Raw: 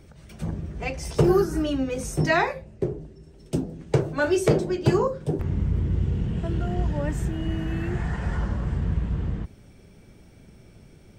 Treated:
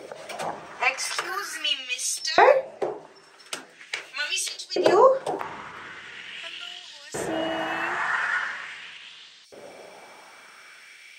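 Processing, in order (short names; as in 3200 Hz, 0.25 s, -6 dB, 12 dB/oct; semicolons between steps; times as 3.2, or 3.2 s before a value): high shelf 9500 Hz -8.5 dB; in parallel at -2.5 dB: compressor, threshold -37 dBFS, peak gain reduction 21 dB; on the sum: limiter -16 dBFS, peak gain reduction 9 dB; LFO high-pass saw up 0.42 Hz 490–4800 Hz; gain +8.5 dB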